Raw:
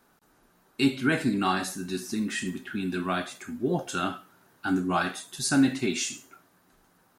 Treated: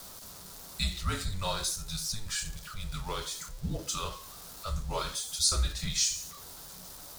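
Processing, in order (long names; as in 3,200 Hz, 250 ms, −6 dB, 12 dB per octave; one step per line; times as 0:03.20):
converter with a step at zero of −38 dBFS
dynamic equaliser 4,600 Hz, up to +3 dB, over −42 dBFS, Q 1.3
frequency shifter −210 Hz
high shelf with overshoot 3,300 Hz +8 dB, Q 1.5
level −8 dB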